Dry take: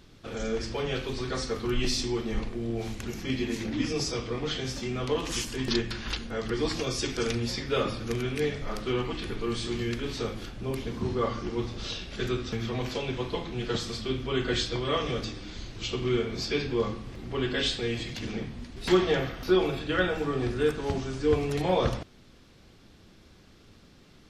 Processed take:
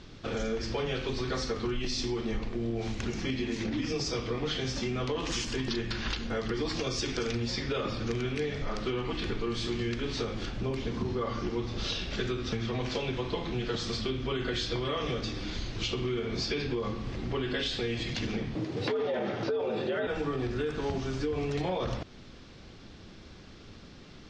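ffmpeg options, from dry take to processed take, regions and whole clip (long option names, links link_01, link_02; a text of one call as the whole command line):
ffmpeg -i in.wav -filter_complex "[0:a]asettb=1/sr,asplit=3[link_01][link_02][link_03];[link_01]atrim=end=18.554[link_04];[link_02]atrim=start=18.55:end=20.07,asetpts=PTS-STARTPTS,afade=type=in:duration=0.004:curve=qsin,afade=type=out:start_time=1.516:duration=0.004:curve=qsin,equalizer=frequency=410:width_type=o:width=2.5:gain=9,acrossover=split=4400[link_05][link_06];[link_06]acompressor=threshold=-51dB:ratio=4:attack=1:release=60[link_07];[link_05][link_07]amix=inputs=2:normalize=0,afreqshift=76[link_08];[link_03]atrim=start=20.066[link_09];[link_04][link_08]acrossfade=duration=0.004:curve1=hsin:curve2=qsin[link_10];[link_10][link_09]acrossfade=duration=0.004:curve1=qsin:curve2=hsin,lowpass=frequency=6600:width=0.5412,lowpass=frequency=6600:width=1.3066,alimiter=limit=-20.5dB:level=0:latency=1:release=48,acompressor=threshold=-35dB:ratio=4,volume=5.5dB" out.wav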